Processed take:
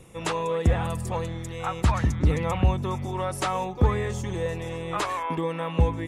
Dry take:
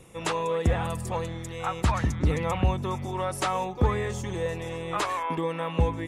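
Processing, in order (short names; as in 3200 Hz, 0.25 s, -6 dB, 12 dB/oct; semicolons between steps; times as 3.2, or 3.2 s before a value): low shelf 220 Hz +3.5 dB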